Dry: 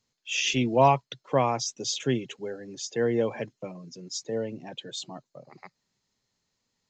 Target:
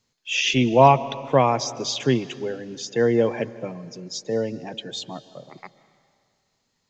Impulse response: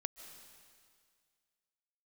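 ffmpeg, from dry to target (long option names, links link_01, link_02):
-filter_complex "[0:a]acrossover=split=6700[link_01][link_02];[link_02]acompressor=threshold=-55dB:ratio=4:attack=1:release=60[link_03];[link_01][link_03]amix=inputs=2:normalize=0,asplit=2[link_04][link_05];[link_05]highshelf=frequency=6600:gain=-8.5[link_06];[1:a]atrim=start_sample=2205[link_07];[link_06][link_07]afir=irnorm=-1:irlink=0,volume=-1dB[link_08];[link_04][link_08]amix=inputs=2:normalize=0,volume=1.5dB"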